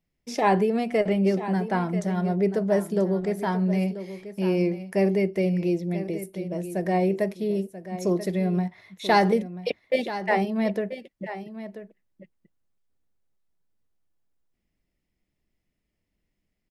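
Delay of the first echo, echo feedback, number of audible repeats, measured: 986 ms, no regular repeats, 1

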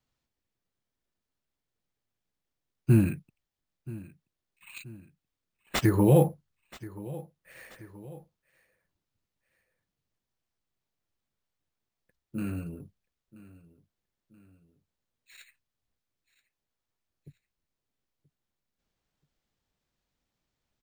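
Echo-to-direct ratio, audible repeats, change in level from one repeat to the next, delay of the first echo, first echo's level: -18.0 dB, 2, -6.5 dB, 979 ms, -19.0 dB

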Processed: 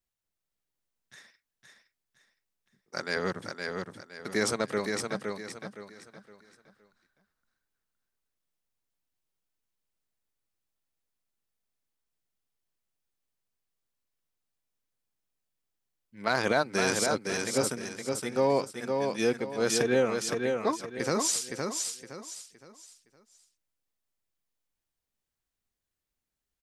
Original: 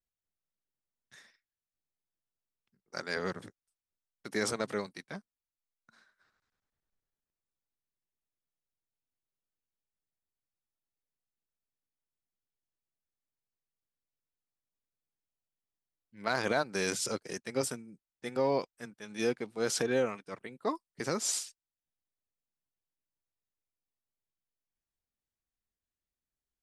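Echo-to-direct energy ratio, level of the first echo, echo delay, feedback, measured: -4.0 dB, -4.5 dB, 515 ms, 32%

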